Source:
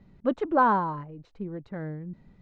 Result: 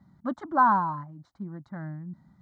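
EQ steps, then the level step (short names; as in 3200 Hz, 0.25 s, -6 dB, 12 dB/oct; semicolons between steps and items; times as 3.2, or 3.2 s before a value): HPF 110 Hz 12 dB/oct; fixed phaser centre 1100 Hz, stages 4; +2.0 dB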